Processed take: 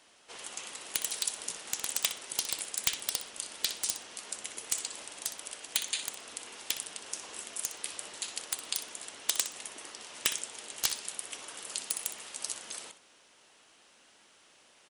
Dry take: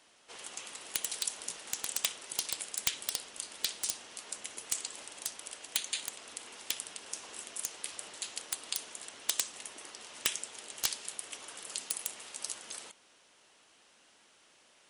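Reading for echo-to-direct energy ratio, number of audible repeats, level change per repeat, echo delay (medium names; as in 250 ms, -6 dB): -12.0 dB, 2, -16.0 dB, 62 ms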